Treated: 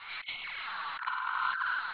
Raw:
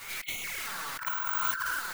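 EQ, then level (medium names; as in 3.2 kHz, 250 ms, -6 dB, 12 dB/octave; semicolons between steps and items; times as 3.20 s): rippled Chebyshev low-pass 4.2 kHz, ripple 3 dB; resonant low shelf 670 Hz -8.5 dB, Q 1.5; 0.0 dB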